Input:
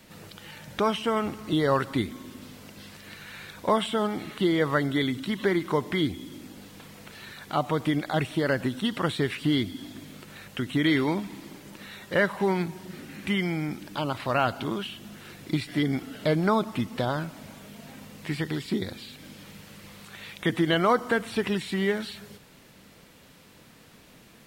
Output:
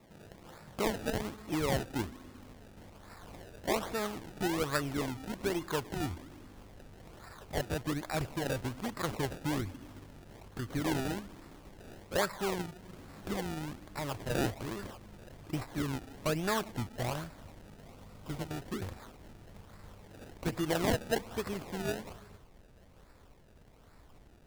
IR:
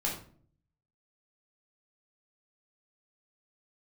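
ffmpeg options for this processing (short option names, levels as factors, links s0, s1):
-filter_complex "[0:a]asubboost=boost=9:cutoff=63,acrusher=samples=28:mix=1:aa=0.000001:lfo=1:lforange=28:lforate=1.2,asettb=1/sr,asplit=3[s0][s1][s2];[s0]atrim=end=17.844[s3];[s1]atrim=start=17.84:end=18.51,asetpts=PTS-STARTPTS,afade=t=in:d=0.004:c=qsin,afade=t=out:st=0.666:d=0.004:c=qsin,bandreject=f=1700:w=6.6[s4];[s2]atrim=start=18.506[s5];[s3][s4]acrossfade=d=0.004:c1=hsin:c2=qsin[s6];[s6][s5]acrossfade=d=0.004:c1=qsin:c2=hsin,volume=0.447"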